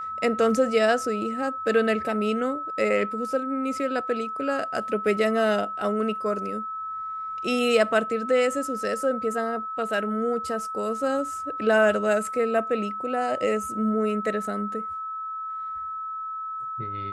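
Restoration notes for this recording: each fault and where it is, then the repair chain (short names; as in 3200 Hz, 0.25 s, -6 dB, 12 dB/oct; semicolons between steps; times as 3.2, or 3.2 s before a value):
tone 1300 Hz -30 dBFS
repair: notch 1300 Hz, Q 30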